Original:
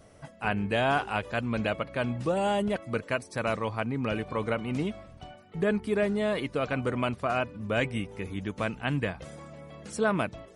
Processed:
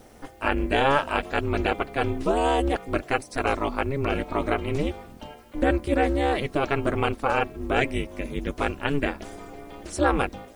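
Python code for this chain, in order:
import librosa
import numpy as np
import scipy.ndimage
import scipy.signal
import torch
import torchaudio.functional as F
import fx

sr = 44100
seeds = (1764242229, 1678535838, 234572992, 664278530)

y = x * np.sin(2.0 * np.pi * 140.0 * np.arange(len(x)) / sr)
y = fx.quant_dither(y, sr, seeds[0], bits=12, dither='triangular')
y = F.gain(torch.from_numpy(y), 7.5).numpy()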